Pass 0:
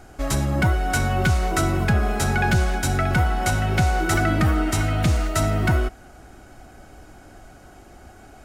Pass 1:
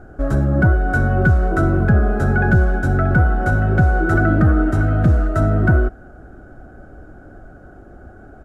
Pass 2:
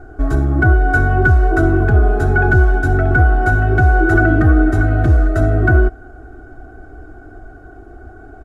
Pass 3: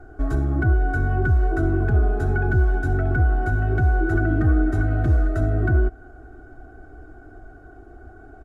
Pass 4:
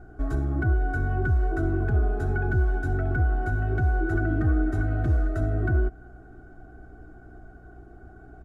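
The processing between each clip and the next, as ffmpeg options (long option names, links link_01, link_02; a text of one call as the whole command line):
ffmpeg -i in.wav -af "firequalizer=gain_entry='entry(570,0);entry(950,-12);entry(1500,0);entry(2100,-21);entry(4700,-24)':delay=0.05:min_phase=1,volume=6dB" out.wav
ffmpeg -i in.wav -af "aecho=1:1:2.7:0.87" out.wav
ffmpeg -i in.wav -filter_complex "[0:a]acrossover=split=360[link_01][link_02];[link_02]acompressor=threshold=-25dB:ratio=2[link_03];[link_01][link_03]amix=inputs=2:normalize=0,volume=-6.5dB" out.wav
ffmpeg -i in.wav -af "aeval=exprs='val(0)+0.00562*(sin(2*PI*60*n/s)+sin(2*PI*2*60*n/s)/2+sin(2*PI*3*60*n/s)/3+sin(2*PI*4*60*n/s)/4+sin(2*PI*5*60*n/s)/5)':channel_layout=same,volume=-4.5dB" out.wav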